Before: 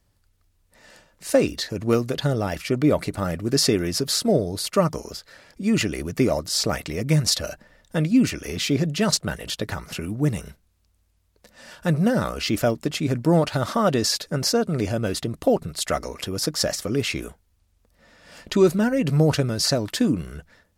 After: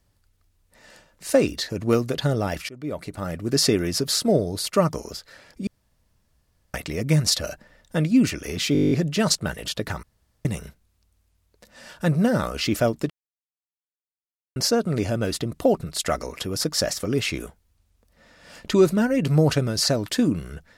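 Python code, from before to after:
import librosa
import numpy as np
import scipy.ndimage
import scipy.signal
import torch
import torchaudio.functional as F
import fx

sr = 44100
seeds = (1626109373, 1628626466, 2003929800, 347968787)

y = fx.edit(x, sr, fx.fade_in_from(start_s=2.69, length_s=0.95, floor_db=-23.5),
    fx.room_tone_fill(start_s=5.67, length_s=1.07),
    fx.stutter(start_s=8.73, slice_s=0.02, count=10),
    fx.room_tone_fill(start_s=9.85, length_s=0.42),
    fx.silence(start_s=12.92, length_s=1.46), tone=tone)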